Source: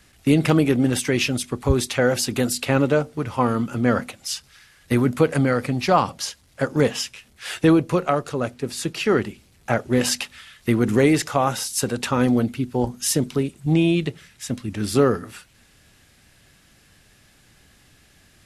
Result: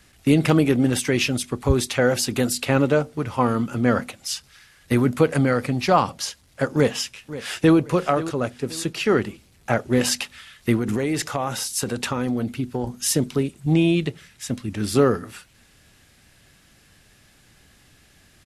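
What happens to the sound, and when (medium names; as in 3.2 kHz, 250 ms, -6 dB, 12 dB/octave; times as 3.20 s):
6.75–7.77 s: echo throw 530 ms, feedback 35%, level -14.5 dB
10.76–13.02 s: compression, threshold -19 dBFS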